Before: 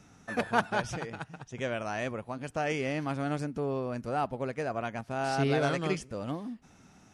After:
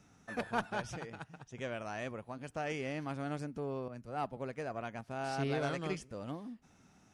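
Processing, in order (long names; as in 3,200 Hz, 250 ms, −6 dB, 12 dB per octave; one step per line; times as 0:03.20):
one-sided soft clipper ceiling −16.5 dBFS
0:03.88–0:04.37: multiband upward and downward expander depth 100%
level −6.5 dB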